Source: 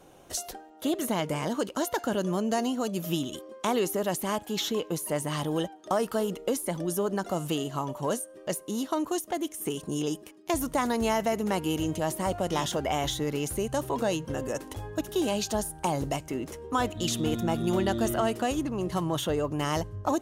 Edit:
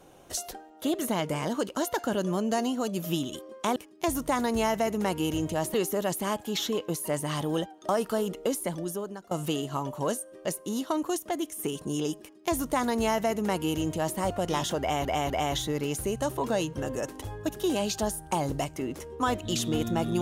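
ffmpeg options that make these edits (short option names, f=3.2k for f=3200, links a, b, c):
-filter_complex "[0:a]asplit=6[a][b][c][d][e][f];[a]atrim=end=3.762[g];[b]atrim=start=10.218:end=12.202[h];[c]atrim=start=3.758:end=7.33,asetpts=PTS-STARTPTS,afade=t=out:st=2.902:d=0.67:silence=0.0794328[i];[d]atrim=start=7.33:end=13.072,asetpts=PTS-STARTPTS,afade=t=in:d=0.004:c=hsin:silence=0.0794328[j];[e]atrim=start=12.818:end=13.072[k];[f]atrim=start=12.818[l];[g][h]acrossfade=d=0.004:c1=hsin:c2=hsin[m];[i][j]concat=n=2:v=0:a=1[n];[m][n]acrossfade=d=0.004:c1=hsin:c2=hsin[o];[o][k]acrossfade=d=0.004:c1=hsin:c2=hsin[p];[p][l]acrossfade=d=0.004:c1=hsin:c2=hsin"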